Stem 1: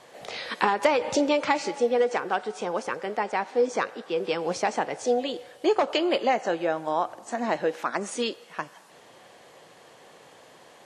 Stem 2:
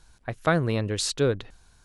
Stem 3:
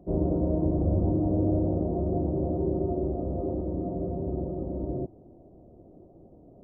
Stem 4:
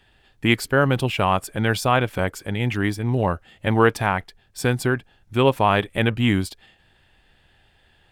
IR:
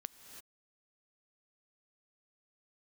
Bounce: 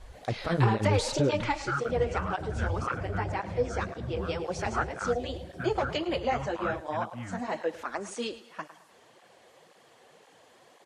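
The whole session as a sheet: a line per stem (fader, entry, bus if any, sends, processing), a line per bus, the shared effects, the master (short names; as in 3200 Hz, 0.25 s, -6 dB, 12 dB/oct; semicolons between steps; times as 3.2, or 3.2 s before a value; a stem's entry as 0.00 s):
-3.5 dB, 0.00 s, no send, echo send -15 dB, dry
+2.5 dB, 0.00 s, no send, no echo send, tilt -2.5 dB/oct; limiter -17 dBFS, peak gain reduction 11.5 dB
-2.5 dB, 1.75 s, no send, no echo send, bell 290 Hz -15 dB 1.3 oct
-2.0 dB, 0.95 s, no send, no echo send, double band-pass 480 Hz, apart 3 oct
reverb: off
echo: feedback echo 0.108 s, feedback 38%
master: tape flanging out of phase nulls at 1.9 Hz, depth 7.4 ms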